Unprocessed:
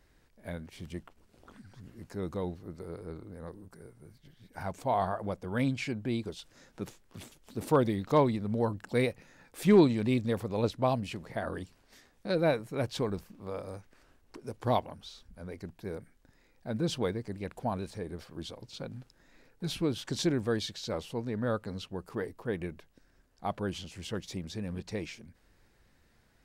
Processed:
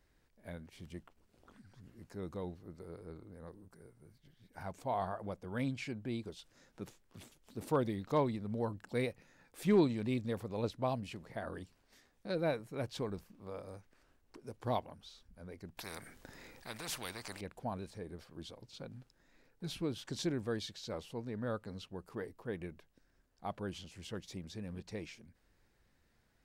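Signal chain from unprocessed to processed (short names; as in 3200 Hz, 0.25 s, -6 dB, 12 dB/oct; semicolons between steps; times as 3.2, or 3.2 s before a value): 15.77–17.41 spectral compressor 4:1; gain -7 dB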